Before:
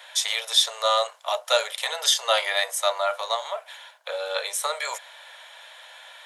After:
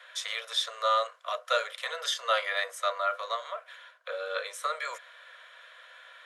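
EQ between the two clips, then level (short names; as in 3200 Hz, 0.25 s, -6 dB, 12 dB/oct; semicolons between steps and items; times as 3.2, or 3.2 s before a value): rippled Chebyshev high-pass 350 Hz, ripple 9 dB; Butterworth band-stop 860 Hz, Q 4.6; high shelf 6600 Hz -9.5 dB; 0.0 dB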